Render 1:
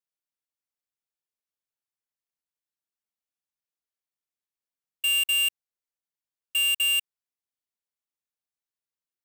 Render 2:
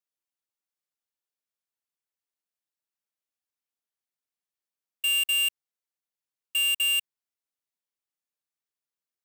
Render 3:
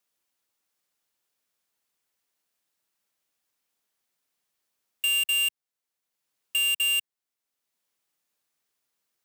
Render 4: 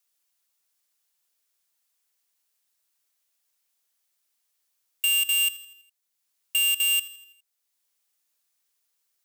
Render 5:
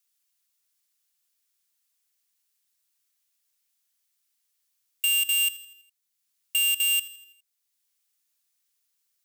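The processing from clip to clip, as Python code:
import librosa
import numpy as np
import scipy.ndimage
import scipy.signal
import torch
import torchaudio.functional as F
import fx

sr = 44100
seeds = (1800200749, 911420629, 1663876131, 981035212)

y1 = fx.highpass(x, sr, hz=150.0, slope=6)
y1 = F.gain(torch.from_numpy(y1), -1.0).numpy()
y2 = fx.band_squash(y1, sr, depth_pct=40)
y3 = fx.highpass(y2, sr, hz=430.0, slope=6)
y3 = fx.high_shelf(y3, sr, hz=3500.0, db=8.5)
y3 = fx.echo_feedback(y3, sr, ms=82, feedback_pct=53, wet_db=-17.0)
y3 = F.gain(torch.from_numpy(y3), -2.5).numpy()
y4 = fx.peak_eq(y3, sr, hz=600.0, db=-8.5, octaves=2.1)
y4 = fx.notch(y4, sr, hz=640.0, q=12.0)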